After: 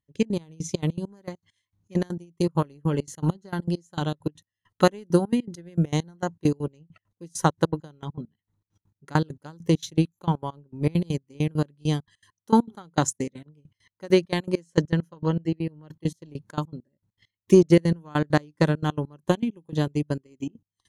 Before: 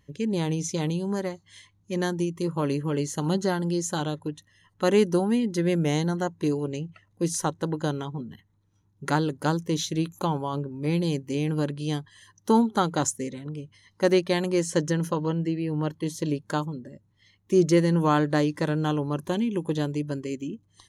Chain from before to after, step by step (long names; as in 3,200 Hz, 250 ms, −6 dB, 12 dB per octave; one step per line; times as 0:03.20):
dynamic equaliser 150 Hz, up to +5 dB, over −40 dBFS, Q 1.3
transient designer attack +9 dB, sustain −4 dB
gate pattern "..x.x...xx.x.x." 200 BPM −24 dB
level −1.5 dB